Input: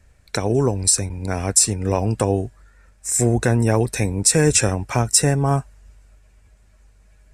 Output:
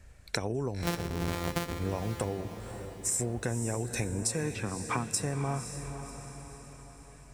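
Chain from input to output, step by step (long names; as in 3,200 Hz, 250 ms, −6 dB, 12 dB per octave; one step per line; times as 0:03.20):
0:00.82–0:01.79: samples sorted by size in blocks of 256 samples
downward compressor 16 to 1, threshold −28 dBFS, peak gain reduction 19 dB
0:04.43–0:05.11: loudspeaker in its box 110–3,800 Hz, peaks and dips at 220 Hz +7 dB, 590 Hz −9 dB, 1,100 Hz +7 dB
feedback delay with all-pass diffusion 544 ms, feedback 51%, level −9 dB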